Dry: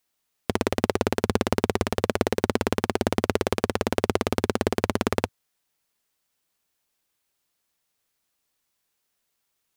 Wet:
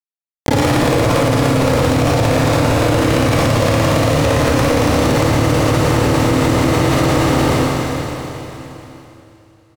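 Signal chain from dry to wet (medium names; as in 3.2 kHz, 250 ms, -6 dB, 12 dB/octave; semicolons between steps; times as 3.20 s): high-pass 47 Hz 6 dB/octave; treble shelf 2.7 kHz -6.5 dB; resampled via 11.025 kHz; fuzz box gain 38 dB, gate -43 dBFS; feedback delay 473 ms, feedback 48%, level -16 dB; pitch shift +4 st; Schroeder reverb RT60 3.6 s, combs from 27 ms, DRR -6.5 dB; level flattener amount 100%; trim -4 dB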